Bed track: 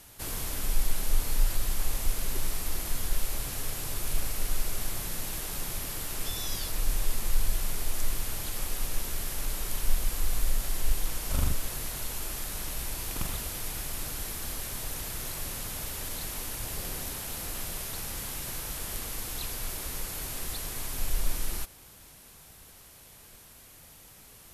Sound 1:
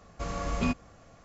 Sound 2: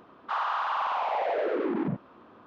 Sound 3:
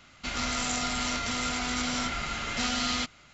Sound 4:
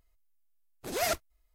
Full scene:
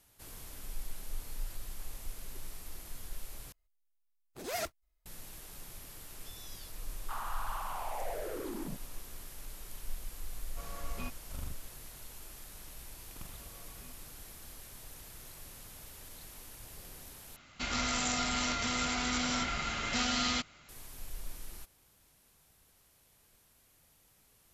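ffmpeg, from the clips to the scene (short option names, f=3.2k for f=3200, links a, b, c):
-filter_complex "[1:a]asplit=2[a][b];[0:a]volume=-14dB[c];[2:a]alimiter=limit=-24dB:level=0:latency=1:release=71[d];[a]equalizer=f=220:t=o:w=1.9:g=-7[e];[b]acompressor=threshold=-39dB:ratio=6:attack=3.2:release=140:knee=1:detection=peak[f];[c]asplit=3[g][h][i];[g]atrim=end=3.524[j];[4:a]atrim=end=1.54,asetpts=PTS-STARTPTS,volume=-7dB[k];[h]atrim=start=5.056:end=17.364[l];[3:a]atrim=end=3.33,asetpts=PTS-STARTPTS,volume=-2.5dB[m];[i]atrim=start=20.686[n];[d]atrim=end=2.46,asetpts=PTS-STARTPTS,volume=-10dB,afade=t=in:d=0.004:c=hsin,afade=t=out:st=2.456:d=0.004:c=hsin,adelay=6800[o];[e]atrim=end=1.24,asetpts=PTS-STARTPTS,volume=-11dB,afade=t=in:d=0.004:c=hsin,afade=t=out:st=1.236:d=0.004:c=hsin,adelay=10370[p];[f]atrim=end=1.24,asetpts=PTS-STARTPTS,volume=-15dB,afade=t=in:d=0.004:c=hsin,afade=t=out:st=1.236:d=0.004:c=hsin,adelay=13200[q];[j][k]acrossfade=d=0.004:c1=hsin:c2=hsin[r];[r][l]acrossfade=d=0.004:c1=hsin:c2=hsin[s];[s][m]acrossfade=d=0.004:c1=hsin:c2=hsin[t];[t][n]acrossfade=d=0.004:c1=hsin:c2=hsin[u];[u][o][p][q]amix=inputs=4:normalize=0"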